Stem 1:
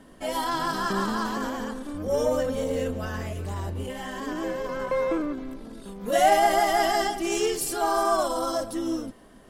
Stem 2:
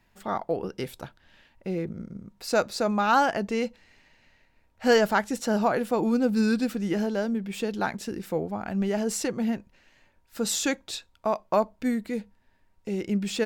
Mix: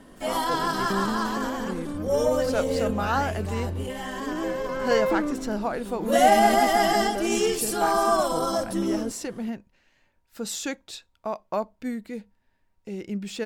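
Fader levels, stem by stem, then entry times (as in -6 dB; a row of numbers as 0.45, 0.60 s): +1.5, -4.5 dB; 0.00, 0.00 s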